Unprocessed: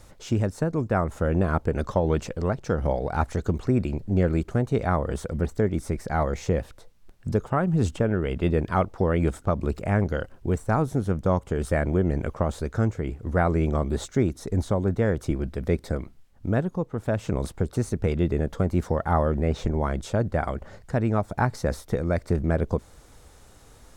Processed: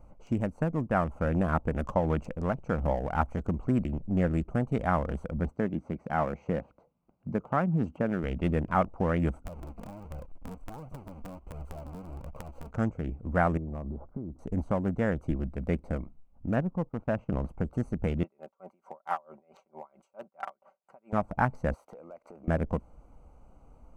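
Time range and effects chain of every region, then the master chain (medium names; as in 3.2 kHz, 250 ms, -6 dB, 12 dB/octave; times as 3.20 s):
5.51–8.24 s: high-pass 130 Hz + distance through air 120 m
9.45–12.71 s: square wave that keeps the level + compression 12:1, threshold -30 dBFS + flange 1.4 Hz, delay 1.3 ms, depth 3.2 ms, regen +32%
13.57–14.39 s: low-pass 1.2 kHz 24 dB/octave + compression, threshold -28 dBFS
16.56–17.49 s: Bessel low-pass 3 kHz + gate -43 dBFS, range -14 dB
18.23–21.13 s: high-pass 750 Hz + comb 5.2 ms, depth 54% + logarithmic tremolo 4.5 Hz, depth 29 dB
21.74–22.48 s: high-pass 610 Hz + compression 5:1, threshold -45 dBFS + waveshaping leveller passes 2
whole clip: local Wiener filter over 25 samples; fifteen-band graphic EQ 100 Hz -10 dB, 400 Hz -9 dB, 4 kHz -10 dB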